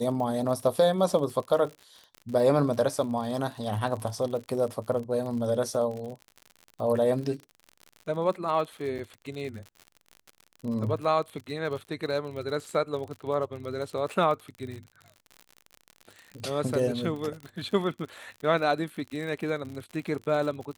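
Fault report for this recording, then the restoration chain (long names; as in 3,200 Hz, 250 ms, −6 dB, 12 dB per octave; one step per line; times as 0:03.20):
surface crackle 58 per second −35 dBFS
0:08.98–0:08.99: drop-out 7.2 ms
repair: click removal
repair the gap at 0:08.98, 7.2 ms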